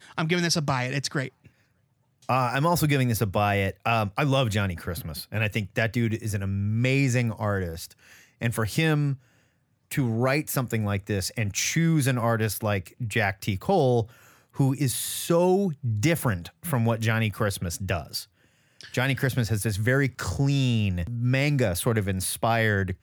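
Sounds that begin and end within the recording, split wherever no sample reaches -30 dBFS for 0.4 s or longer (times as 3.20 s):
2.29–7.85 s
8.42–9.14 s
9.92–14.03 s
14.59–18.21 s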